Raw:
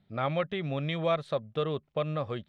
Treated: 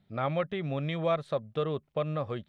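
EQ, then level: dynamic bell 3.7 kHz, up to -4 dB, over -46 dBFS, Q 0.76; 0.0 dB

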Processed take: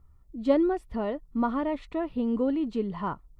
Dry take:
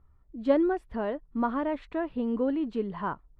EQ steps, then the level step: Butterworth band-stop 1.6 kHz, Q 6.8; tone controls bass +4 dB, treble +8 dB; 0.0 dB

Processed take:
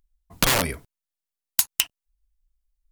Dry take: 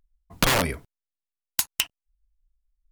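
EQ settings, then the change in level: treble shelf 4.4 kHz +6 dB; -1.0 dB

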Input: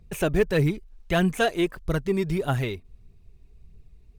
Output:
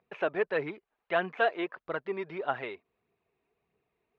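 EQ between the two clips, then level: band-pass 700–4500 Hz; distance through air 300 m; treble shelf 2.6 kHz -9.5 dB; +3.0 dB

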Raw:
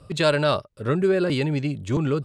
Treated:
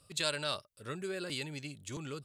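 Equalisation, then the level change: pre-emphasis filter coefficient 0.9; 0.0 dB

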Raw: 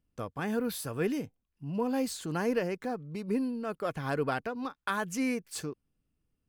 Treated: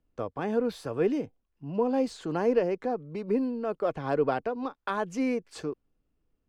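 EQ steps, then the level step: three-band isolator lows -17 dB, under 340 Hz, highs -13 dB, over 8 kHz; dynamic bell 1.6 kHz, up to -5 dB, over -48 dBFS, Q 1.3; tilt EQ -3.5 dB/octave; +4.5 dB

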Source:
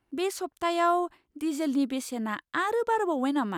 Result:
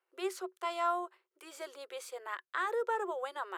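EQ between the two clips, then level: rippled Chebyshev high-pass 360 Hz, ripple 6 dB; band-stop 1.7 kHz, Q 28; -3.5 dB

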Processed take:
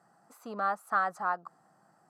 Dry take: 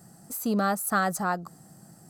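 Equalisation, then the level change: band-pass filter 1.1 kHz, Q 1.6; 0.0 dB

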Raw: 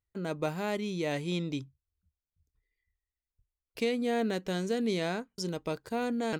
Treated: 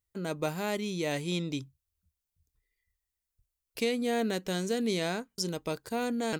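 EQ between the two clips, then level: treble shelf 5.2 kHz +9.5 dB; 0.0 dB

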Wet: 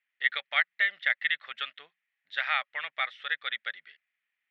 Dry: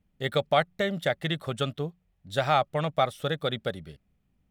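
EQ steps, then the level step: resonant high-pass 1.9 kHz, resonance Q 4.2; low-pass 3.7 kHz 24 dB/octave; -2.0 dB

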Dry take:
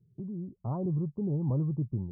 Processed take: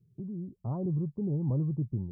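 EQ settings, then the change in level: peaking EQ 1.1 kHz -4.5 dB 1.7 oct; 0.0 dB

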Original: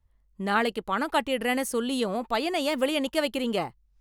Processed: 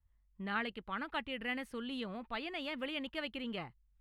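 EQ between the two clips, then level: dynamic bell 830 Hz, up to -5 dB, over -36 dBFS, Q 0.82; distance through air 480 m; amplifier tone stack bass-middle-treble 5-5-5; +7.5 dB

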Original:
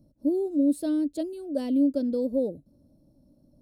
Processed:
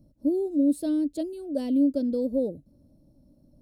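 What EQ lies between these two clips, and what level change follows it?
dynamic bell 1.3 kHz, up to -4 dB, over -46 dBFS, Q 1.2; bass shelf 110 Hz +5 dB; 0.0 dB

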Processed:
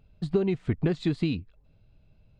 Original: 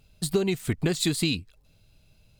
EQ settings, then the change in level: tape spacing loss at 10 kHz 37 dB; +1.0 dB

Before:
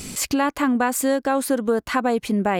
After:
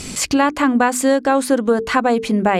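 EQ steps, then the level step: low-pass 8.9 kHz 12 dB/octave; hum notches 50/100/150/200/250/300/350/400/450 Hz; +5.5 dB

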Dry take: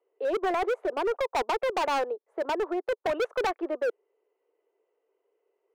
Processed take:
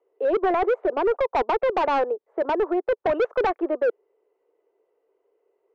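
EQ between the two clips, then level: tape spacing loss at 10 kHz 29 dB; +7.5 dB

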